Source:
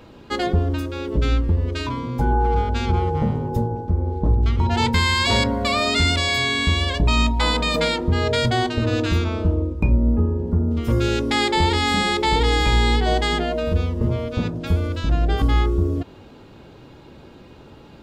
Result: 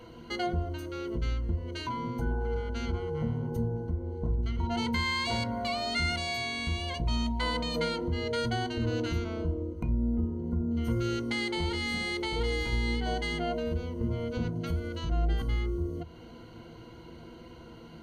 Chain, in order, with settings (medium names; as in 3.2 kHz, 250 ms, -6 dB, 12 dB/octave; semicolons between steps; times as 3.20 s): compression 2:1, threshold -31 dBFS, peak gain reduction 10 dB; rippled EQ curve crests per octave 1.9, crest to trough 15 dB; trim -6 dB